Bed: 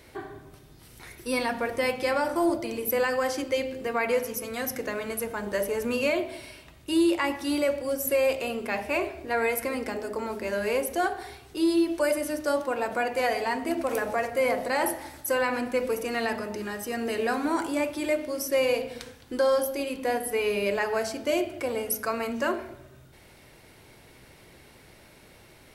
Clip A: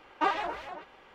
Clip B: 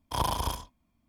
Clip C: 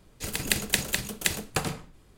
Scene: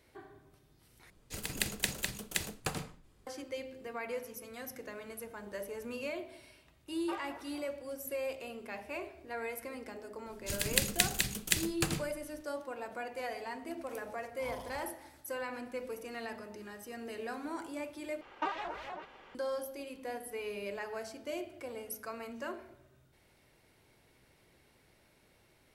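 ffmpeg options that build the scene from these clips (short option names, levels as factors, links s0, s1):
-filter_complex "[3:a]asplit=2[s0][s1];[1:a]asplit=2[s2][s3];[0:a]volume=0.211[s4];[s1]equalizer=f=720:w=0.69:g=-8.5[s5];[2:a]asplit=2[s6][s7];[s7]adelay=9.6,afreqshift=-2[s8];[s6][s8]amix=inputs=2:normalize=1[s9];[s3]acompressor=threshold=0.00631:ratio=2:attack=81:release=209:knee=1:detection=peak[s10];[s4]asplit=3[s11][s12][s13];[s11]atrim=end=1.104[s14];[s0]atrim=end=2.17,asetpts=PTS-STARTPTS,volume=0.398[s15];[s12]atrim=start=3.266:end=18.214[s16];[s10]atrim=end=1.14,asetpts=PTS-STARTPTS,volume=0.944[s17];[s13]atrim=start=19.346[s18];[s2]atrim=end=1.14,asetpts=PTS-STARTPTS,volume=0.168,afade=t=in:d=0.004:c=hsin,afade=t=out:st=1.136:d=0.004:c=hsin,adelay=6870[s19];[s5]atrim=end=2.17,asetpts=PTS-STARTPTS,volume=0.75,afade=t=in:d=0.004:c=hsin,afade=t=out:st=2.166:d=0.004:c=hsin,adelay=452466S[s20];[s9]atrim=end=1.08,asetpts=PTS-STARTPTS,volume=0.15,afade=t=in:d=0.004:c=hsin,afade=t=out:st=1.076:d=0.004:c=hsin,adelay=629748S[s21];[s14][s15]acrossfade=d=0.004:c1=hsin:c2=hsin[s22];[s22][s16]acrossfade=d=0.004:c1=hsin:c2=hsin[s23];[s23][s17]acrossfade=d=0.004:c1=hsin:c2=hsin[s24];[s24][s18]acrossfade=d=0.004:c1=hsin:c2=hsin[s25];[s25][s19][s20][s21]amix=inputs=4:normalize=0"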